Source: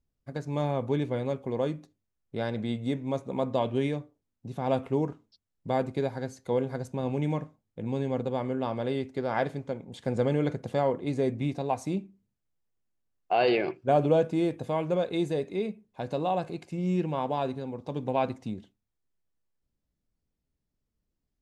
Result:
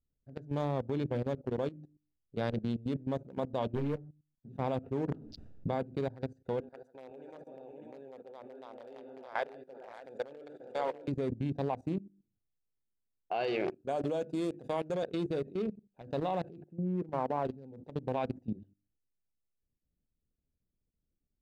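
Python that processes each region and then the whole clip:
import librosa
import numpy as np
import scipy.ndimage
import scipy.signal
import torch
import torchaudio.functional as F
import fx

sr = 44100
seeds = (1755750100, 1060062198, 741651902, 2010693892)

y = fx.chain(x, sr, fx.lowpass(hz=1900.0, slope=12),
    fx.leveller(passes=2),
    fx.ensemble(), at=(3.75, 4.49))
y = fx.chain(y, sr, fx.air_absorb(metres=55.0),
    fx.env_flatten(amount_pct=70), at=(5.08, 5.79))
y = fx.chain(y, sr, fx.highpass(hz=690.0, slope=12),
    fx.echo_multitap(ms=(145, 437, 456, 540, 601), db=(-11.5, -20.0, -14.5, -9.0, -5.5)), at=(6.6, 11.08))
y = fx.chain(y, sr, fx.highpass(hz=140.0, slope=12),
    fx.bass_treble(bass_db=-4, treble_db=10), at=(13.67, 15.03))
y = fx.chain(y, sr, fx.lowpass(hz=1800.0, slope=24),
    fx.low_shelf(hz=96.0, db=-8.5), at=(16.62, 17.45))
y = fx.wiener(y, sr, points=41)
y = fx.hum_notches(y, sr, base_hz=50, count=7)
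y = fx.level_steps(y, sr, step_db=17)
y = y * 10.0 ** (2.0 / 20.0)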